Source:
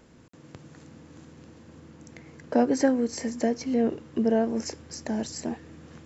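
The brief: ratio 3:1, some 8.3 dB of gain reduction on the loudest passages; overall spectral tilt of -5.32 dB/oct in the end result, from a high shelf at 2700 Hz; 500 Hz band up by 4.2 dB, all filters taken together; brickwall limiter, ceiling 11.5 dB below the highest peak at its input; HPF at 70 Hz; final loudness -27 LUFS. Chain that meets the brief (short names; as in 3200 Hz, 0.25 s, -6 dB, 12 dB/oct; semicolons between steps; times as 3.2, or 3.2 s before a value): HPF 70 Hz; bell 500 Hz +5 dB; high shelf 2700 Hz -7 dB; compressor 3:1, threshold -25 dBFS; gain +9 dB; limiter -16 dBFS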